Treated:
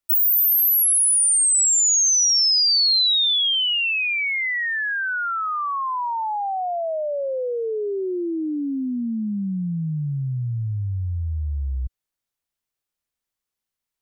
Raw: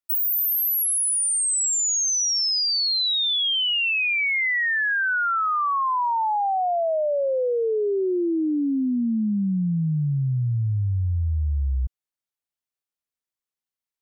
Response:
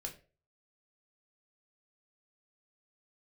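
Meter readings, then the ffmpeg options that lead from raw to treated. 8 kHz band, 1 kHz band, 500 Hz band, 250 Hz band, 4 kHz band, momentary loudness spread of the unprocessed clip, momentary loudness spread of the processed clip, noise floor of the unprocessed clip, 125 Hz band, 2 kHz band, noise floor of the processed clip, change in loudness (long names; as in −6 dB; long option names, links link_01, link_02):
+5.0 dB, −2.5 dB, −2.5 dB, −2.5 dB, +4.0 dB, 5 LU, 12 LU, below −85 dBFS, −2.5 dB, −1.0 dB, below −85 dBFS, +2.5 dB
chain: -filter_complex "[0:a]lowshelf=frequency=80:gain=8.5,acrossover=split=3900[link_01][link_02];[link_01]alimiter=level_in=3dB:limit=-24dB:level=0:latency=1:release=40,volume=-3dB[link_03];[link_03][link_02]amix=inputs=2:normalize=0,volume=5dB"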